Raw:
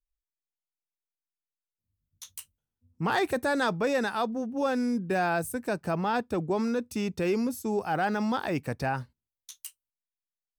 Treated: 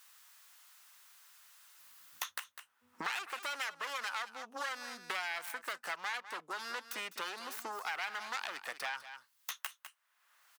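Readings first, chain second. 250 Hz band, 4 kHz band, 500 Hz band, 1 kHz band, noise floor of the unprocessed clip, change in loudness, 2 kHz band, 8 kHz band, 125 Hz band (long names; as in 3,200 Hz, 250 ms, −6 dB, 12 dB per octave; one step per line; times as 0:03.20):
−28.5 dB, −0.5 dB, −20.5 dB, −10.0 dB, below −85 dBFS, −11.0 dB, −4.5 dB, −3.0 dB, below −30 dB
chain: phase distortion by the signal itself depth 0.28 ms
notch filter 2,300 Hz, Q 23
downward compressor 6 to 1, threshold −40 dBFS, peak gain reduction 15.5 dB
high-pass with resonance 1,200 Hz, resonance Q 1.6
single-tap delay 201 ms −14.5 dB
multiband upward and downward compressor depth 100%
level +5 dB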